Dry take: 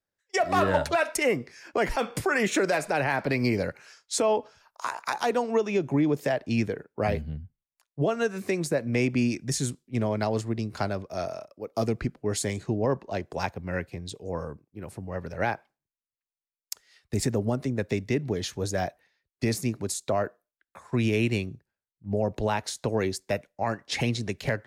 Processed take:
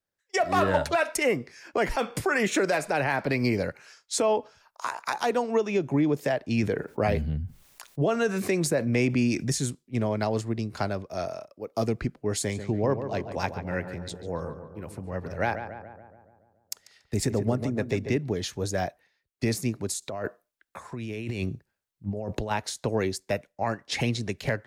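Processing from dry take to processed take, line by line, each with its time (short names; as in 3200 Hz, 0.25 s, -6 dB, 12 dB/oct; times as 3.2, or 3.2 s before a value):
6.63–9.52 fast leveller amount 50%
12.38–18.18 darkening echo 0.142 s, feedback 61%, low-pass 2100 Hz, level -9 dB
20.02–22.51 negative-ratio compressor -32 dBFS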